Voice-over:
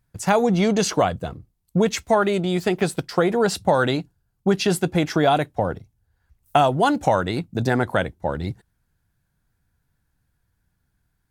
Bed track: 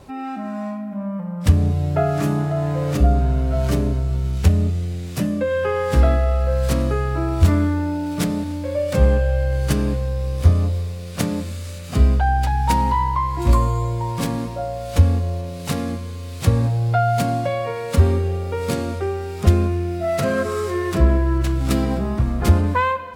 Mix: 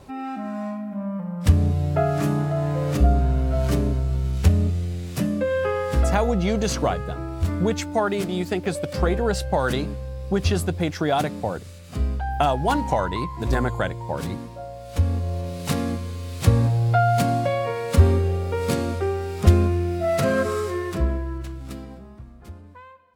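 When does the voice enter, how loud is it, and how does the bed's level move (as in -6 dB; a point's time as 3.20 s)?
5.85 s, -4.0 dB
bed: 5.64 s -2 dB
6.44 s -9.5 dB
14.84 s -9.5 dB
15.47 s -0.5 dB
20.48 s -0.5 dB
22.53 s -26 dB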